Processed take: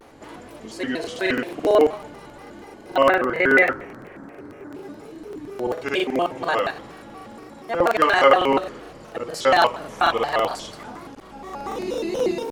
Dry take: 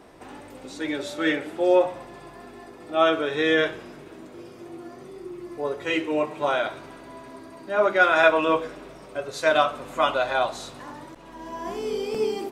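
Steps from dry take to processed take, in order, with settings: 3.02–4.74 resonant high shelf 2500 Hz -10 dB, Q 3; crackling interface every 0.11 s, samples 2048, repeat, from 1; shaped vibrato square 4.2 Hz, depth 250 cents; gain +2 dB

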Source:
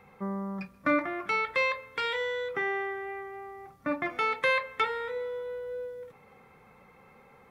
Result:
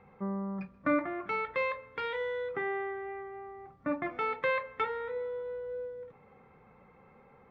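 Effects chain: tape spacing loss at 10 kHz 31 dB

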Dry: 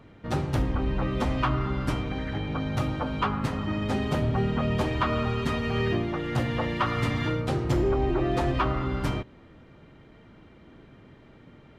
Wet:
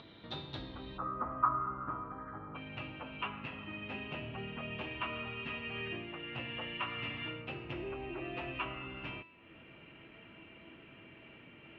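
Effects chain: HPF 140 Hz 6 dB/oct; upward compressor, threshold -30 dBFS; ladder low-pass 3900 Hz, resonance 85%, from 0.97 s 1300 Hz, from 2.54 s 2800 Hz; resonator 330 Hz, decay 0.69 s, mix 80%; gain +10 dB

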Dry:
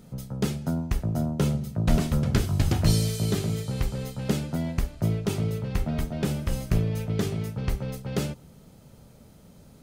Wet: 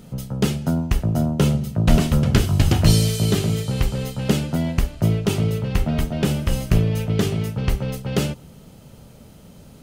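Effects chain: bell 2900 Hz +5.5 dB 0.28 oct; gain +6.5 dB

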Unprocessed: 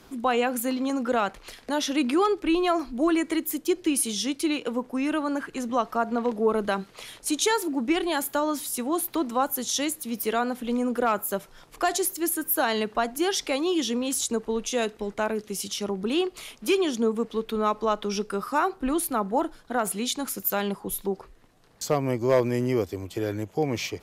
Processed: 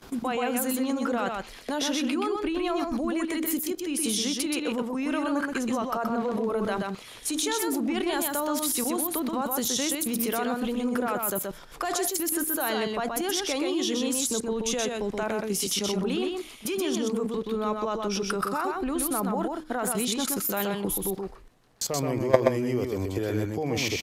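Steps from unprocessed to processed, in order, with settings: de-hum 77.63 Hz, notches 4; level quantiser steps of 18 dB; on a send: echo 0.126 s -3.5 dB; on the sum: gain +7.5 dB

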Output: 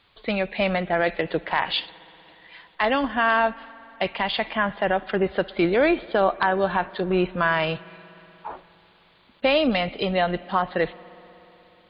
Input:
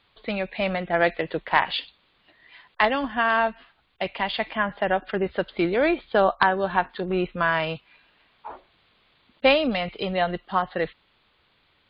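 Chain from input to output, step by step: limiter -13 dBFS, peak gain reduction 8.5 dB; spring tank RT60 3.8 s, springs 60 ms, chirp 55 ms, DRR 19.5 dB; gain +3 dB

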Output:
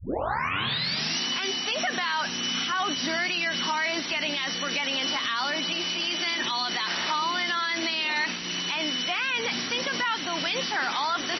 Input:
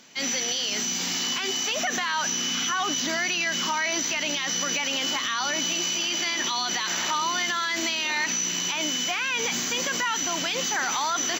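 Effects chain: tape start at the beginning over 1.20 s; MP3 24 kbps 22050 Hz

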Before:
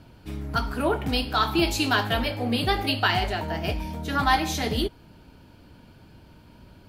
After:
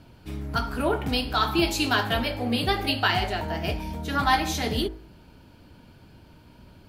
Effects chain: de-hum 53.5 Hz, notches 38

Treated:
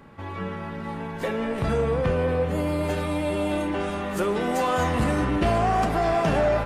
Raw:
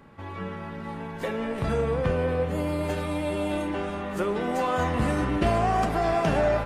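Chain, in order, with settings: 3.8–5.04 high shelf 4400 Hz +6.5 dB; soft clip -16.5 dBFS, distortion -20 dB; gain +3 dB

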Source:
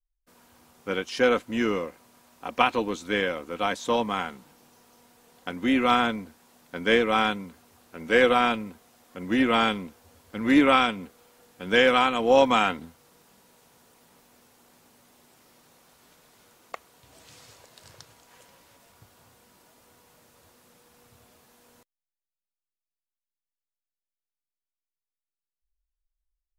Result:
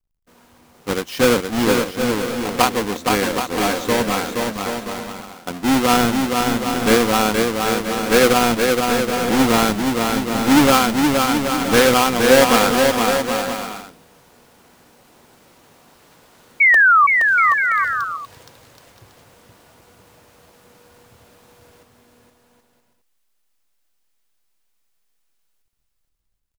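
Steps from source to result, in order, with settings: half-waves squared off; painted sound fall, 16.6–17.07, 1100–2300 Hz -12 dBFS; bouncing-ball echo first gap 0.47 s, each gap 0.65×, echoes 5; gain +1 dB

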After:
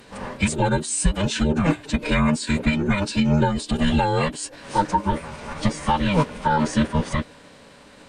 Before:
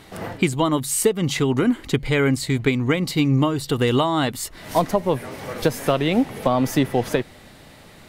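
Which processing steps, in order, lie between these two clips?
band inversion scrambler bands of 500 Hz; formant-preserving pitch shift -9 st

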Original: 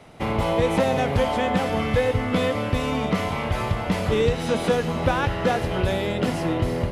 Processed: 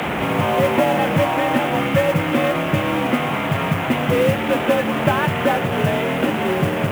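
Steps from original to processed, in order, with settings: delta modulation 16 kbps, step -20 dBFS; frequency shift +57 Hz; modulation noise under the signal 23 dB; gain +3.5 dB

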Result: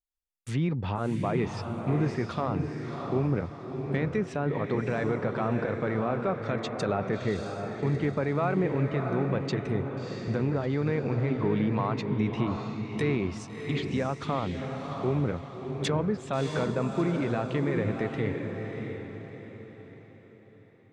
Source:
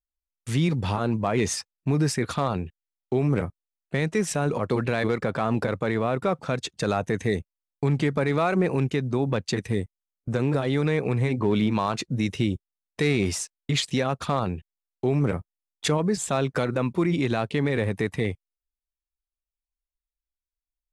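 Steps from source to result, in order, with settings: treble ducked by the level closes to 2100 Hz, closed at -21 dBFS; diffused feedback echo 0.661 s, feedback 42%, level -5 dB; gain -4.5 dB

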